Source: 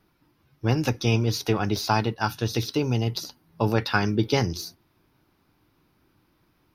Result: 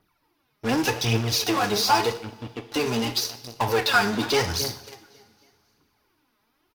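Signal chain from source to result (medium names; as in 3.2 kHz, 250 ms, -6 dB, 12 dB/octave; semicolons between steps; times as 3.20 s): feedback delay 273 ms, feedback 50%, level -18 dB; phaser 0.86 Hz, delay 5 ms, feedback 67%; 2.17–2.72 s: cascade formant filter i; in parallel at -7 dB: fuzz box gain 33 dB, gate -36 dBFS; on the sum: bass shelf 320 Hz -10.5 dB; two-slope reverb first 0.59 s, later 2.9 s, from -22 dB, DRR 8 dB; trim -3.5 dB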